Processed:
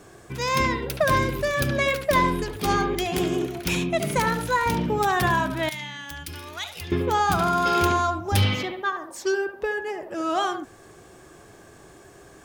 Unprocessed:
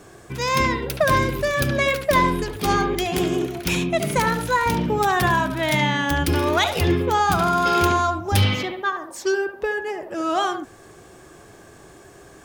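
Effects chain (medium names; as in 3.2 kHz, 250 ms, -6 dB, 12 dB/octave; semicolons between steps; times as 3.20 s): 5.69–6.92 s: amplifier tone stack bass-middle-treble 5-5-5; trim -2.5 dB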